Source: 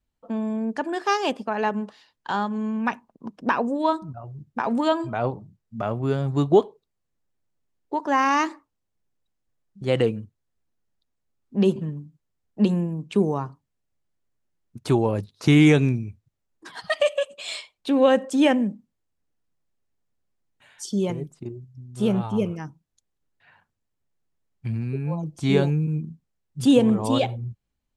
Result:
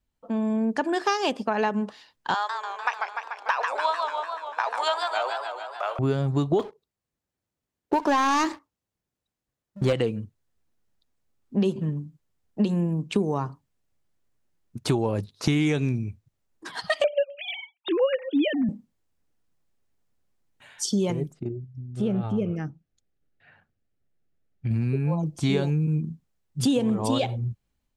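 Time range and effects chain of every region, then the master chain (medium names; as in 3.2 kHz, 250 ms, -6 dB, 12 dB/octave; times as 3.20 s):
2.34–5.99 s: Bessel high-pass 930 Hz, order 8 + modulated delay 147 ms, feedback 71%, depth 192 cents, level -6 dB
6.59–9.93 s: high-pass 42 Hz + waveshaping leveller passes 2
17.04–18.69 s: formants replaced by sine waves + treble shelf 2.5 kHz +9 dB
21.33–24.71 s: low-pass 1.8 kHz 6 dB/octave + peaking EQ 980 Hz -14.5 dB 0.34 oct + compression 2:1, threshold -28 dBFS
whole clip: level rider gain up to 4 dB; dynamic bell 5.1 kHz, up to +4 dB, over -41 dBFS, Q 1.1; compression 6:1, threshold -20 dBFS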